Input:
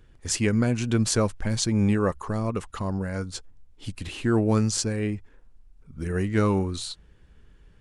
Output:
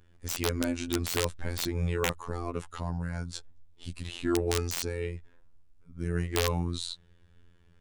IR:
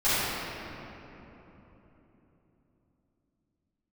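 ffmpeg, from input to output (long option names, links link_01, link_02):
-af "afftfilt=real='hypot(re,im)*cos(PI*b)':imag='0':win_size=2048:overlap=0.75,adynamicequalizer=threshold=0.00158:dfrequency=3700:dqfactor=5.6:tfrequency=3700:tqfactor=5.6:attack=5:release=100:ratio=0.375:range=3.5:mode=boostabove:tftype=bell,aeval=exprs='(mod(4.47*val(0)+1,2)-1)/4.47':channel_layout=same,volume=-1.5dB"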